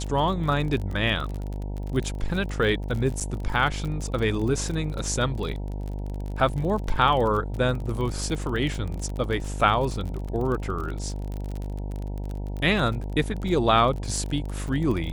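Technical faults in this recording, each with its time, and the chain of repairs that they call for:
mains buzz 50 Hz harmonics 19 −31 dBFS
surface crackle 36 per second −30 dBFS
0:03.20–0:03.21: drop-out 7.4 ms
0:10.28: drop-out 4.8 ms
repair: click removal
hum removal 50 Hz, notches 19
repair the gap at 0:03.20, 7.4 ms
repair the gap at 0:10.28, 4.8 ms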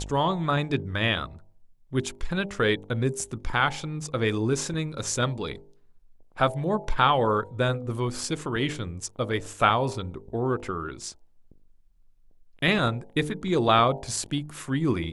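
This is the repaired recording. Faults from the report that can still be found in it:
none of them is left

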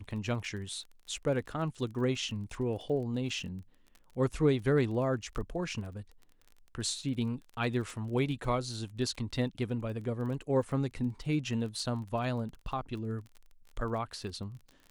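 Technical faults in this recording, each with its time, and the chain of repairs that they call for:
surface crackle 29 per second −41 dBFS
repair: click removal

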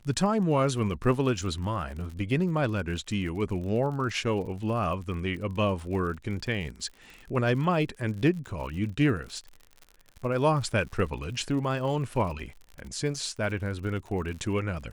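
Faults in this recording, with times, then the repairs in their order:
surface crackle 59 per second −37 dBFS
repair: click removal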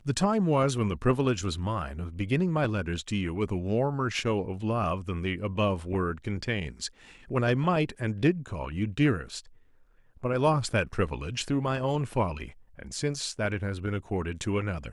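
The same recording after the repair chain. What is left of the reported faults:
none of them is left

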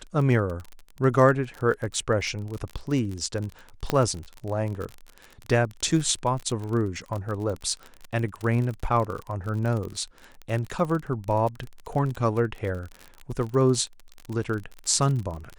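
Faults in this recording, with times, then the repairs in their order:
surface crackle 35 per second −30 dBFS
0:03.90: click −9 dBFS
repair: click removal

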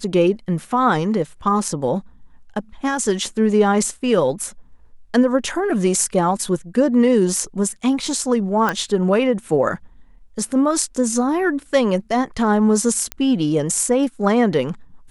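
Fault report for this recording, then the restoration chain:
0:08.69: click −7 dBFS
0:13.12: click −8 dBFS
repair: click removal

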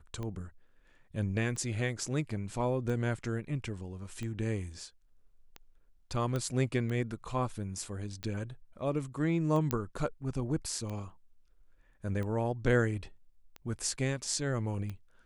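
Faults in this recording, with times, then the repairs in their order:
scratch tick 45 rpm −27 dBFS
0:06.36: click −21 dBFS
0:09.71: click −15 dBFS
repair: click removal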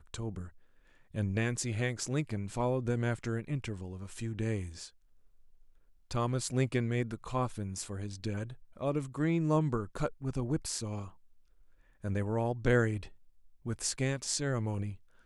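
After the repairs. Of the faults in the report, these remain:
none of them is left

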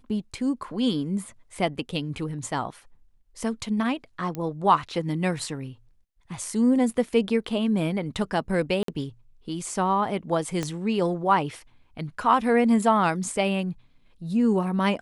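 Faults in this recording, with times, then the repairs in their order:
0:04.35: click −18 dBFS
0:08.83–0:08.88: drop-out 53 ms
0:10.63: click −15 dBFS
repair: click removal
repair the gap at 0:08.83, 53 ms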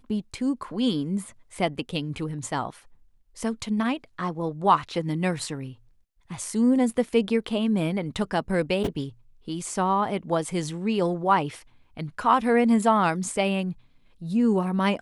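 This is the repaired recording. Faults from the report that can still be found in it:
0:10.63: click

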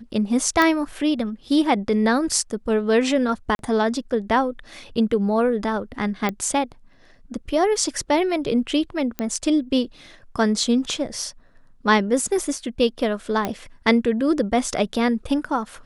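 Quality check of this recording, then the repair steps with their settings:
0:00.62: click −6 dBFS
0:03.55–0:03.59: drop-out 41 ms
0:06.29: click −11 dBFS
0:09.19: click −11 dBFS
0:13.45: click −10 dBFS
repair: click removal
repair the gap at 0:03.55, 41 ms

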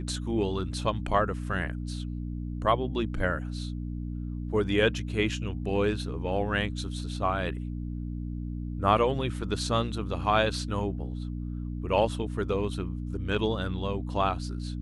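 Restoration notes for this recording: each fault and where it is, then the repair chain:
mains hum 60 Hz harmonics 5 −34 dBFS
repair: hum removal 60 Hz, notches 5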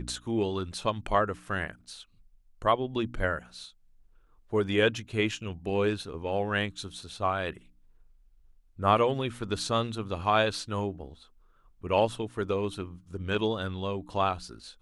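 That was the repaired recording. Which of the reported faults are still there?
none of them is left

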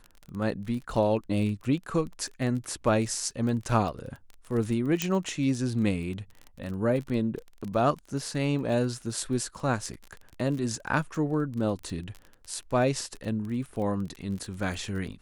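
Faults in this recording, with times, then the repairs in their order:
surface crackle 28 per second −34 dBFS
0:05.02: click −10 dBFS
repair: click removal

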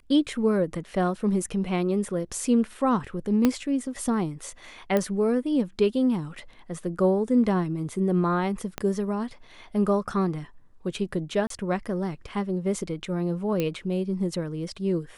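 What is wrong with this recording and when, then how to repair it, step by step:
0:03.45: click −8 dBFS
0:04.97: click −12 dBFS
0:08.78: click −14 dBFS
0:11.47–0:11.50: drop-out 33 ms
0:13.60: click −13 dBFS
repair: click removal
repair the gap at 0:11.47, 33 ms

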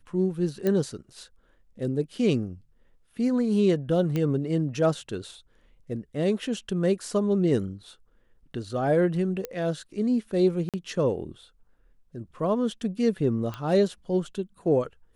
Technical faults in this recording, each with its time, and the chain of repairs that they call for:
0:00.67: click −14 dBFS
0:04.16: click −16 dBFS
0:09.45: click −17 dBFS
0:10.69–0:10.74: drop-out 47 ms
0:13.54: click −21 dBFS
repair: click removal
repair the gap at 0:10.69, 47 ms

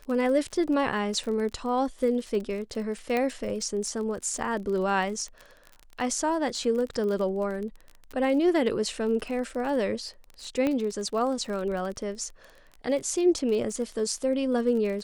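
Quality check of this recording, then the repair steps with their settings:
surface crackle 32 per second −33 dBFS
0:03.17: click −15 dBFS
0:10.67: click −15 dBFS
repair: click removal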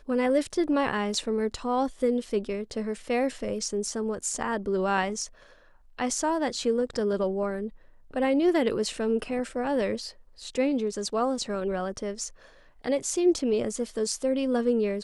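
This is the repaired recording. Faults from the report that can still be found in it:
none of them is left

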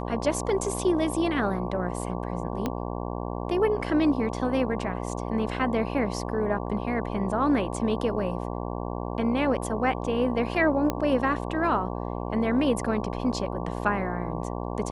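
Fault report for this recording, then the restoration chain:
mains buzz 60 Hz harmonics 19 −32 dBFS
0:02.66: click −14 dBFS
0:10.90: click −12 dBFS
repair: click removal
hum removal 60 Hz, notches 19

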